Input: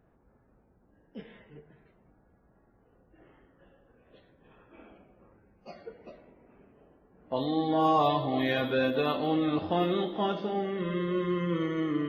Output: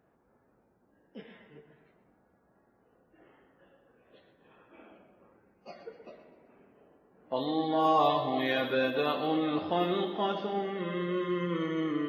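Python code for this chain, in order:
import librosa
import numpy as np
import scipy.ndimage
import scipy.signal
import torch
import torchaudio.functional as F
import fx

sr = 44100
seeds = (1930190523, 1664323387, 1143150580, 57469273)

p1 = fx.highpass(x, sr, hz=260.0, slope=6)
y = p1 + fx.echo_feedback(p1, sr, ms=125, feedback_pct=44, wet_db=-12.0, dry=0)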